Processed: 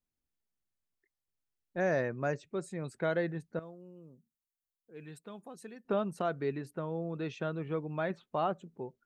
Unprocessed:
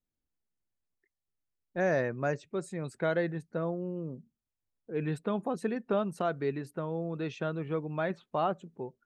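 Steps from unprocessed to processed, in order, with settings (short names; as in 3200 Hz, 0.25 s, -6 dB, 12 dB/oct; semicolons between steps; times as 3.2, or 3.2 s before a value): 3.59–5.85 pre-emphasis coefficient 0.8; gain -2 dB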